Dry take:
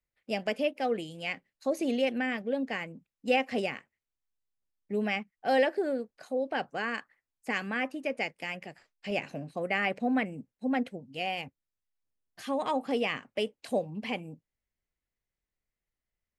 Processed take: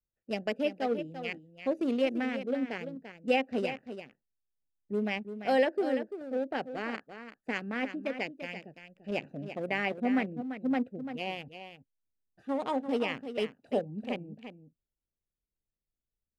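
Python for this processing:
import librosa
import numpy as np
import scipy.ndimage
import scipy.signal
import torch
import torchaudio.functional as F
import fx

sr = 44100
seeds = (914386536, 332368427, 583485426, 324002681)

p1 = fx.wiener(x, sr, points=41)
p2 = fx.dynamic_eq(p1, sr, hz=330.0, q=1.1, threshold_db=-41.0, ratio=4.0, max_db=3)
p3 = p2 + fx.echo_single(p2, sr, ms=341, db=-10.0, dry=0)
y = p3 * 10.0 ** (-1.5 / 20.0)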